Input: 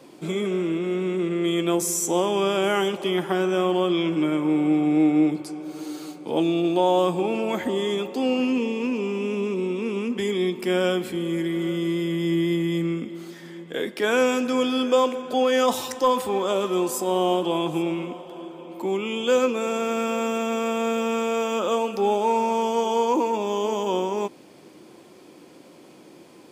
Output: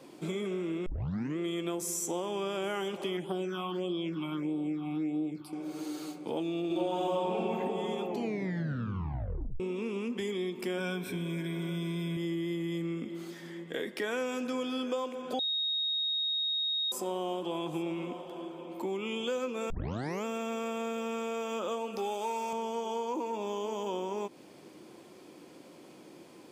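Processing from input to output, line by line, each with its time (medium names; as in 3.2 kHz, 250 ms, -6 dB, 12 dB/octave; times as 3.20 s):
0.86 s: tape start 0.52 s
3.17–5.53 s: phase shifter stages 6, 1.6 Hz, lowest notch 450–1900 Hz
6.66–7.37 s: reverb throw, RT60 2.9 s, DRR -11.5 dB
8.06 s: tape stop 1.54 s
10.78–12.17 s: rippled EQ curve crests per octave 1.6, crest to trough 13 dB
13.50–14.23 s: small resonant body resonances 1.9 kHz, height 11 dB
15.39–16.92 s: bleep 3.75 kHz -16.5 dBFS
19.70 s: tape start 0.55 s
21.98–22.53 s: tilt EQ +2.5 dB/octave
whole clip: compression 4:1, threshold -28 dBFS; trim -4 dB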